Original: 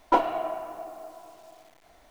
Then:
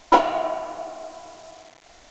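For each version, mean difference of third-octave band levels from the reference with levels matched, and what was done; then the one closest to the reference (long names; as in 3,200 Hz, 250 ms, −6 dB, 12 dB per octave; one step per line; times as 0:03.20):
3.5 dB: high-shelf EQ 3,800 Hz +10.5 dB
bit reduction 9 bits
downsampling to 16,000 Hz
level +5 dB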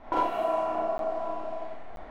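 8.0 dB: low-pass that shuts in the quiet parts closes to 1,500 Hz, open at −23.5 dBFS
downward compressor 4 to 1, threshold −41 dBFS, peak gain reduction 21 dB
four-comb reverb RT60 0.59 s, combs from 28 ms, DRR −6 dB
regular buffer underruns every 0.98 s zero, from 0:00.98
level +7.5 dB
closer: first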